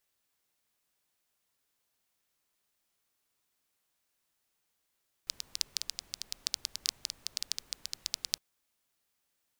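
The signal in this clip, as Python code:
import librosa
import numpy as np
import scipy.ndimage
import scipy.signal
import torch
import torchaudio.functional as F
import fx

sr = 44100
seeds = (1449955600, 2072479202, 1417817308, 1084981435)

y = fx.rain(sr, seeds[0], length_s=3.11, drops_per_s=9.9, hz=4800.0, bed_db=-22)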